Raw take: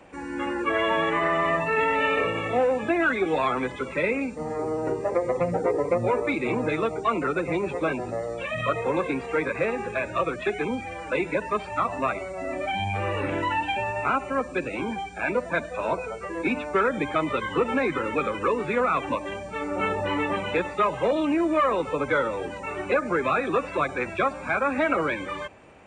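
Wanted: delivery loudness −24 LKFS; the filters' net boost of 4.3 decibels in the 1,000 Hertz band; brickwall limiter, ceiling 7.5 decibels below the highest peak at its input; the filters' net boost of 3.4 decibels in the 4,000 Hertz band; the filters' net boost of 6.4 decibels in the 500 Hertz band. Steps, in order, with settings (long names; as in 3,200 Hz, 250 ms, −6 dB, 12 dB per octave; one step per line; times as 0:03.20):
parametric band 500 Hz +6.5 dB
parametric band 1,000 Hz +3.5 dB
parametric band 4,000 Hz +4.5 dB
level −1 dB
brickwall limiter −13 dBFS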